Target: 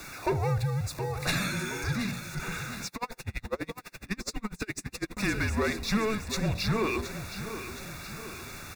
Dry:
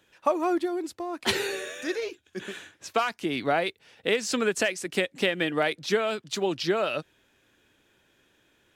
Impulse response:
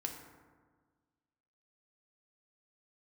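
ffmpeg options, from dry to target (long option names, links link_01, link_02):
-filter_complex "[0:a]aeval=exprs='val(0)+0.5*0.0141*sgn(val(0))':channel_layout=same,bandreject=frequency=56.74:width_type=h:width=4,bandreject=frequency=113.48:width_type=h:width=4,bandreject=frequency=170.22:width_type=h:width=4,bandreject=frequency=226.96:width_type=h:width=4,bandreject=frequency=283.7:width_type=h:width=4,bandreject=frequency=340.44:width_type=h:width=4,bandreject=frequency=397.18:width_type=h:width=4,bandreject=frequency=453.92:width_type=h:width=4,bandreject=frequency=510.66:width_type=h:width=4,bandreject=frequency=567.4:width_type=h:width=4,bandreject=frequency=624.14:width_type=h:width=4,bandreject=frequency=680.88:width_type=h:width=4,bandreject=frequency=737.62:width_type=h:width=4,bandreject=frequency=794.36:width_type=h:width=4,bandreject=frequency=851.1:width_type=h:width=4,bandreject=frequency=907.84:width_type=h:width=4,bandreject=frequency=964.58:width_type=h:width=4,bandreject=frequency=1021.32:width_type=h:width=4,bandreject=frequency=1078.06:width_type=h:width=4,bandreject=frequency=1134.8:width_type=h:width=4,asoftclip=type=tanh:threshold=-21dB,afreqshift=-220,asuperstop=centerf=3100:order=20:qfactor=5.2,aecho=1:1:720|1440|2160|2880|3600|4320:0.266|0.144|0.0776|0.0419|0.0226|0.0122,asettb=1/sr,asplit=3[link_01][link_02][link_03];[link_01]atrim=end=2.874[link_04];[link_02]atrim=start=2.87:end=5.17,asetpts=PTS-STARTPTS,afade=type=in:duration=0.004:curve=qsin,afade=type=out:start_time=2.296:duration=0.004:curve=qsin,aeval=exprs='val(0)*pow(10,-34*(0.5-0.5*cos(2*PI*12*n/s))/20)':channel_layout=same[link_05];[link_03]atrim=start=5.166[link_06];[link_04][link_05]acrossfade=duration=0.004:curve1=hsin:curve2=qsin[link_07];[link_07][link_06]acrossfade=duration=0.004:curve1=qsin:curve2=hsin"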